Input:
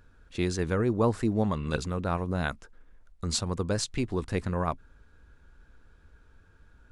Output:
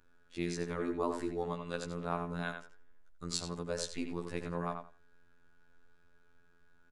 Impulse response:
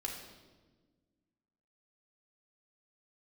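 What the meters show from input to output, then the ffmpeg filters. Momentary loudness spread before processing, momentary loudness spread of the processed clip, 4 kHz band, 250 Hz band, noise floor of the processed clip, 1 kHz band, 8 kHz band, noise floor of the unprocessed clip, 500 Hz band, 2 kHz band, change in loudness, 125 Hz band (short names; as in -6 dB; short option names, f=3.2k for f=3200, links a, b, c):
8 LU, 6 LU, -7.0 dB, -9.0 dB, -63 dBFS, -6.0 dB, -7.0 dB, -59 dBFS, -7.0 dB, -6.5 dB, -8.5 dB, -12.5 dB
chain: -filter_complex "[0:a]equalizer=f=76:t=o:w=1.5:g=-13,afftfilt=real='hypot(re,im)*cos(PI*b)':imag='0':win_size=2048:overlap=0.75,asplit=2[a][b];[b]adelay=86,lowpass=f=3.6k:p=1,volume=-6dB,asplit=2[c][d];[d]adelay=86,lowpass=f=3.6k:p=1,volume=0.19,asplit=2[e][f];[f]adelay=86,lowpass=f=3.6k:p=1,volume=0.19[g];[a][c][e][g]amix=inputs=4:normalize=0,volume=-4dB"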